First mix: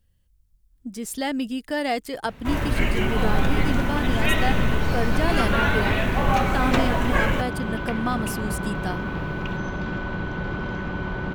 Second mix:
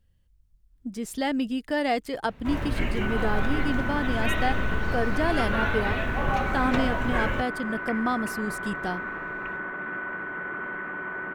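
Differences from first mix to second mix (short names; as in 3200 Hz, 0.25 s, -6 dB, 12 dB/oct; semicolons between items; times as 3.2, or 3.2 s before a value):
first sound -5.0 dB; second sound: add speaker cabinet 460–2100 Hz, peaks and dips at 530 Hz -7 dB, 840 Hz -8 dB, 1300 Hz +3 dB, 1900 Hz +8 dB; master: add high shelf 5400 Hz -8.5 dB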